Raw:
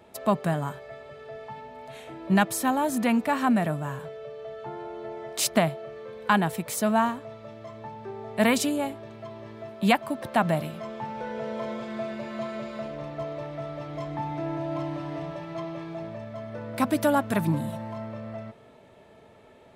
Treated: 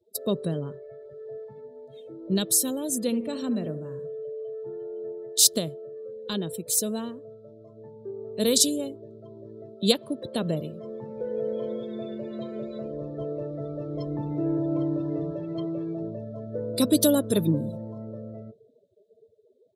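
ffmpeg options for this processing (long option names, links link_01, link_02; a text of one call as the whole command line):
ffmpeg -i in.wav -filter_complex "[0:a]asettb=1/sr,asplit=3[link_01][link_02][link_03];[link_01]atrim=end=0.584[link_04];[link_02]atrim=start=0.58:end=1.02,asetpts=PTS-STARTPTS,afade=type=in:duration=0.004:curve=qsin,afade=type=out:start_time=0.436:duration=0.004:curve=qsin,lowpass=4200[link_05];[link_03]atrim=start=1.016[link_06];[link_04][link_05]acrossfade=duration=0.004:curve1=hsin:curve2=qsin[link_07];[link_07][link_06]acrossfade=duration=0.004:curve1=qsin:curve2=hsin,asettb=1/sr,asplit=3[link_08][link_09][link_10];[link_08]atrim=end=3.004[link_11];[link_09]atrim=start=3:end=5.12,asetpts=PTS-STARTPTS,afade=type=in:duration=0.004:curve=qsin,afade=type=out:start_time=2.116:duration=0.004:curve=qsin,aecho=1:1:73|146|219|292:0.251|0.111|0.0486|0.0214,atrim=end_sample=93492[link_12];[link_10]atrim=start=5.116[link_13];[link_11][link_12]acrossfade=duration=0.004:curve1=hsin:curve2=qsin[link_14];[link_14][link_13]acrossfade=duration=0.004:curve1=qsin:curve2=hsin,afftdn=noise_reduction=34:noise_floor=-41,firequalizer=gain_entry='entry(230,0);entry(470,10);entry(750,-16);entry(1200,-12);entry(2200,-13);entry(3700,15)':delay=0.05:min_phase=1,dynaudnorm=framelen=500:gausssize=13:maxgain=6.5dB,volume=-2dB" out.wav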